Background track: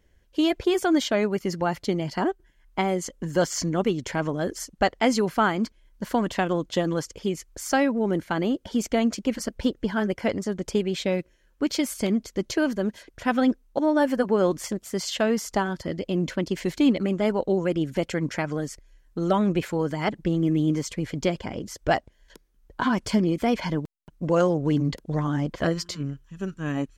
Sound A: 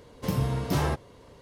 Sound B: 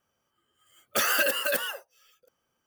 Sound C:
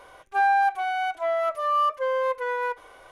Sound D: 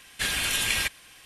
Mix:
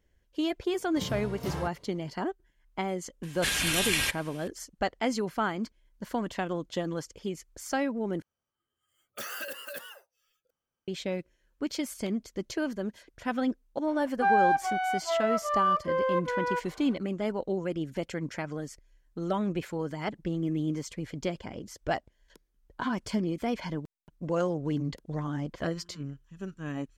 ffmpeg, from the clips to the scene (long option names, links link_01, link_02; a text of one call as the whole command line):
ffmpeg -i bed.wav -i cue0.wav -i cue1.wav -i cue2.wav -i cue3.wav -filter_complex "[0:a]volume=-7.5dB[link_01];[2:a]lowshelf=frequency=86:gain=10.5[link_02];[3:a]aemphasis=mode=reproduction:type=50kf[link_03];[link_01]asplit=2[link_04][link_05];[link_04]atrim=end=8.224[link_06];[link_02]atrim=end=2.66,asetpts=PTS-STARTPTS,volume=-13.5dB[link_07];[link_05]atrim=start=10.876[link_08];[1:a]atrim=end=1.41,asetpts=PTS-STARTPTS,volume=-9dB,afade=type=in:duration=0.004:curve=hsin,afade=type=out:start_time=1.406:duration=0.004:curve=hsin,adelay=730[link_09];[4:a]atrim=end=1.25,asetpts=PTS-STARTPTS,volume=-1.5dB,afade=type=in:duration=0.004:curve=hsin,afade=type=out:start_time=1.246:duration=0.004:curve=hsin,adelay=3230[link_10];[link_03]atrim=end=3.11,asetpts=PTS-STARTPTS,volume=-2.5dB,afade=type=in:duration=0.004:curve=hsin,afade=type=out:start_time=3.106:duration=0.004:curve=hsin,adelay=13870[link_11];[link_06][link_07]acrossfade=duration=0.004:curve1=hsin:curve2=hsin[link_12];[link_12][link_08]acrossfade=duration=0.004:curve1=hsin:curve2=hsin[link_13];[link_13][link_09][link_10][link_11]amix=inputs=4:normalize=0" out.wav